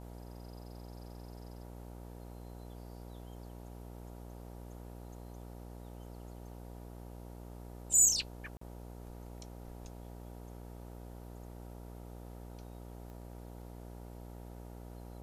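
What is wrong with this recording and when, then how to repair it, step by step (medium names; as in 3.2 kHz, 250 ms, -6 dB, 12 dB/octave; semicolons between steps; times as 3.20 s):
buzz 60 Hz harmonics 16 -48 dBFS
8.57–8.61 s: dropout 44 ms
13.10 s: pop -39 dBFS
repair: de-click; de-hum 60 Hz, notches 16; interpolate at 8.57 s, 44 ms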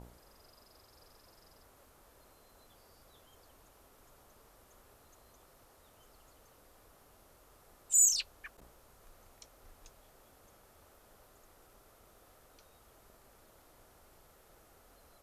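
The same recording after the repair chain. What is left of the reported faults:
nothing left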